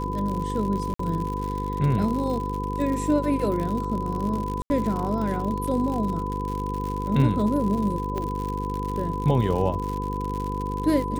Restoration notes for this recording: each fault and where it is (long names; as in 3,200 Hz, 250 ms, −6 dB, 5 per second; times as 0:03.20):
mains buzz 50 Hz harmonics 10 −30 dBFS
surface crackle 96 per second −29 dBFS
whistle 1,000 Hz −30 dBFS
0:00.94–0:00.99: drop-out 54 ms
0:04.62–0:04.70: drop-out 80 ms
0:08.18: click −17 dBFS